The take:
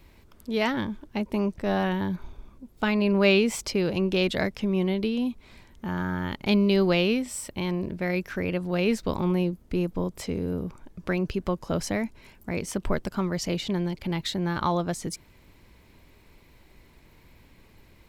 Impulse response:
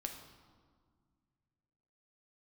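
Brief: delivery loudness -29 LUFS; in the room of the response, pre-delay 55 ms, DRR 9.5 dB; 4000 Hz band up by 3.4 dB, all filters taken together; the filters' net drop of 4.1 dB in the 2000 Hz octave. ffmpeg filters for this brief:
-filter_complex "[0:a]equalizer=f=2k:t=o:g=-8.5,equalizer=f=4k:t=o:g=7.5,asplit=2[a][b];[1:a]atrim=start_sample=2205,adelay=55[c];[b][c]afir=irnorm=-1:irlink=0,volume=-8dB[d];[a][d]amix=inputs=2:normalize=0,volume=-2.5dB"

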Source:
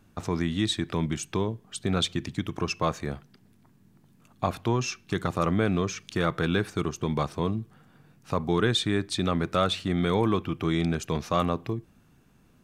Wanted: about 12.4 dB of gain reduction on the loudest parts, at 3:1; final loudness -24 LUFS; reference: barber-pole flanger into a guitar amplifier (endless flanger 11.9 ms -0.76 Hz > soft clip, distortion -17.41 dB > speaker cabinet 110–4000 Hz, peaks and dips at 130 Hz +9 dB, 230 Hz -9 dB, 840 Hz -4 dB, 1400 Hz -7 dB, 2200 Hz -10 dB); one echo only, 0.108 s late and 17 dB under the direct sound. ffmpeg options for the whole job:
-filter_complex "[0:a]acompressor=threshold=-37dB:ratio=3,aecho=1:1:108:0.141,asplit=2[a][b];[b]adelay=11.9,afreqshift=-0.76[c];[a][c]amix=inputs=2:normalize=1,asoftclip=threshold=-32.5dB,highpass=110,equalizer=f=130:t=q:w=4:g=9,equalizer=f=230:t=q:w=4:g=-9,equalizer=f=840:t=q:w=4:g=-4,equalizer=f=1.4k:t=q:w=4:g=-7,equalizer=f=2.2k:t=q:w=4:g=-10,lowpass=f=4k:w=0.5412,lowpass=f=4k:w=1.3066,volume=21dB"

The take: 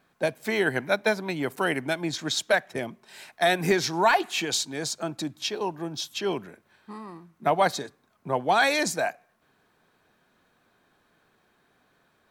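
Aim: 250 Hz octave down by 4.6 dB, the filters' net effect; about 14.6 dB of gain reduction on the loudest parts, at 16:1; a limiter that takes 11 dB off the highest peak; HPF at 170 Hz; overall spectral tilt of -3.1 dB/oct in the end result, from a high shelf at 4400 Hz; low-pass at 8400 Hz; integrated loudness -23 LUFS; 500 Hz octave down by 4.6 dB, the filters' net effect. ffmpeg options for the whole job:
-af "highpass=170,lowpass=8.4k,equalizer=f=250:t=o:g=-3,equalizer=f=500:t=o:g=-5.5,highshelf=f=4.4k:g=-3.5,acompressor=threshold=-33dB:ratio=16,volume=17.5dB,alimiter=limit=-11.5dB:level=0:latency=1"

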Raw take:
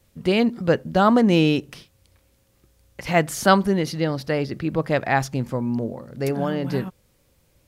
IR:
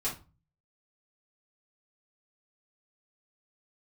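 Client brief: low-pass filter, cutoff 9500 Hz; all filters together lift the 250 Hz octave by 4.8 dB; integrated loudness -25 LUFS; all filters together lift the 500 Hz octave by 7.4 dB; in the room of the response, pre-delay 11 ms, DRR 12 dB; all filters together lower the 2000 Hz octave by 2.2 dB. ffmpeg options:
-filter_complex "[0:a]lowpass=9.5k,equalizer=f=250:t=o:g=4,equalizer=f=500:t=o:g=8,equalizer=f=2k:t=o:g=-3.5,asplit=2[a][b];[1:a]atrim=start_sample=2205,adelay=11[c];[b][c]afir=irnorm=-1:irlink=0,volume=-16.5dB[d];[a][d]amix=inputs=2:normalize=0,volume=-8.5dB"

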